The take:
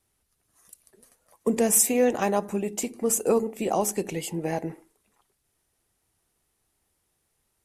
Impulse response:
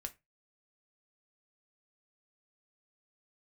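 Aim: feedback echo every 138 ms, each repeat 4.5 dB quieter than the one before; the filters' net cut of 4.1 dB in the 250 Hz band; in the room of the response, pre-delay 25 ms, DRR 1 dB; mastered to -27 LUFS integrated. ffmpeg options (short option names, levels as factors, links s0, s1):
-filter_complex "[0:a]equalizer=f=250:t=o:g=-5,aecho=1:1:138|276|414|552|690|828|966|1104|1242:0.596|0.357|0.214|0.129|0.0772|0.0463|0.0278|0.0167|0.01,asplit=2[s0][s1];[1:a]atrim=start_sample=2205,adelay=25[s2];[s1][s2]afir=irnorm=-1:irlink=0,volume=1.26[s3];[s0][s3]amix=inputs=2:normalize=0,volume=0.562"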